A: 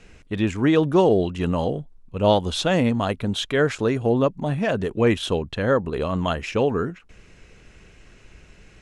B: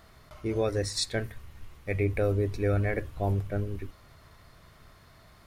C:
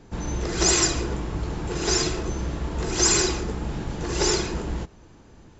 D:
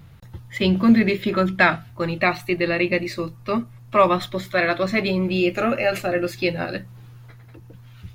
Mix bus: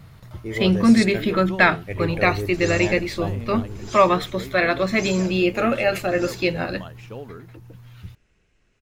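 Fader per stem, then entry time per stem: -16.0 dB, -0.5 dB, -16.5 dB, +0.5 dB; 0.55 s, 0.00 s, 2.00 s, 0.00 s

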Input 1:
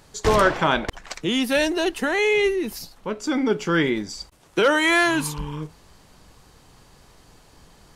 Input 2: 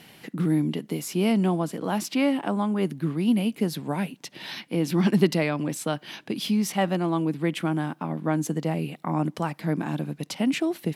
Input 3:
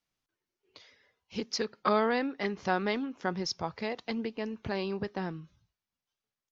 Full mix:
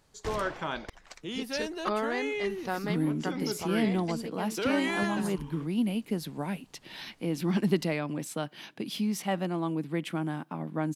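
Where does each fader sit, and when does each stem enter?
-14.0 dB, -6.0 dB, -4.0 dB; 0.00 s, 2.50 s, 0.00 s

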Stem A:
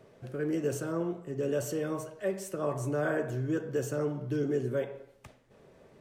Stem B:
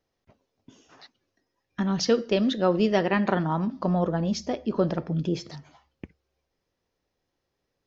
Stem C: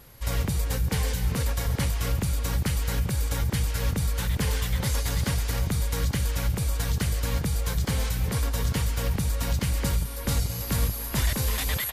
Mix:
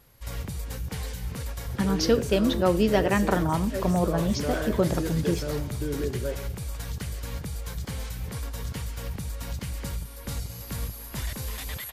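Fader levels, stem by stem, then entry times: -1.0 dB, 0.0 dB, -7.5 dB; 1.50 s, 0.00 s, 0.00 s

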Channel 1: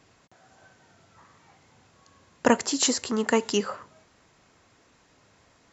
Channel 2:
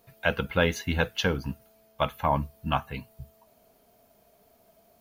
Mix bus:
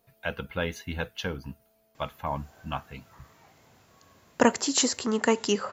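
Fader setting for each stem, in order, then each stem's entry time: -0.5 dB, -6.5 dB; 1.95 s, 0.00 s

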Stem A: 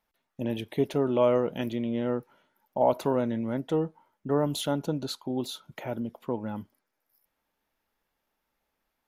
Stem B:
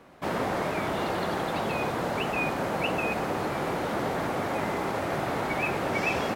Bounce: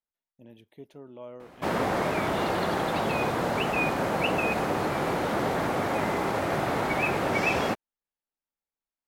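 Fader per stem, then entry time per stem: -20.0 dB, +2.0 dB; 0.00 s, 1.40 s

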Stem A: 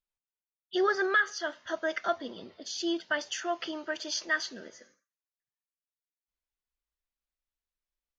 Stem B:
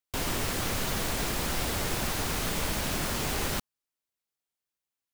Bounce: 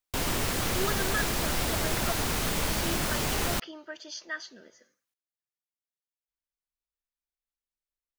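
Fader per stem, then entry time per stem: -7.0 dB, +1.5 dB; 0.00 s, 0.00 s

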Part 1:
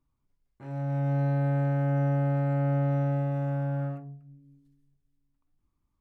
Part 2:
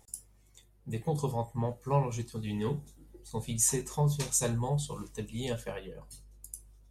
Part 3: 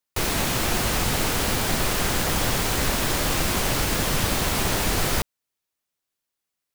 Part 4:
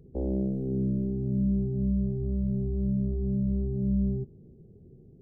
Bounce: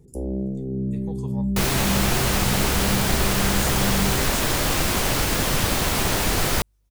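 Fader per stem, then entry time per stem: mute, -8.0 dB, +1.5 dB, +1.5 dB; mute, 0.00 s, 1.40 s, 0.00 s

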